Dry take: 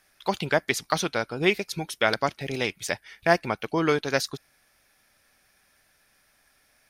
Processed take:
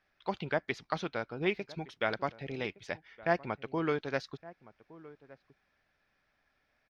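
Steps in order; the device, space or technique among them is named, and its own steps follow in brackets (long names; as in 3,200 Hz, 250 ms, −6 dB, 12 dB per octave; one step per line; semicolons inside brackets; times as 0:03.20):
shout across a valley (high-frequency loss of the air 230 metres; slap from a distant wall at 200 metres, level −19 dB)
level −7.5 dB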